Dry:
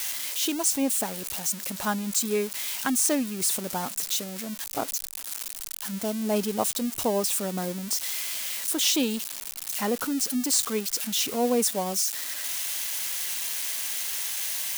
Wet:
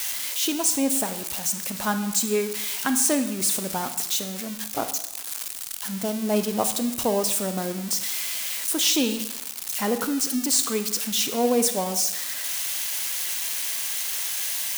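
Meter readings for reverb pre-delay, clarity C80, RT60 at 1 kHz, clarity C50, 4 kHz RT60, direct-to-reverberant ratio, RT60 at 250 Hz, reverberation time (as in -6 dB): 32 ms, 12.5 dB, 0.90 s, 10.5 dB, 0.85 s, 9.0 dB, 0.85 s, 0.90 s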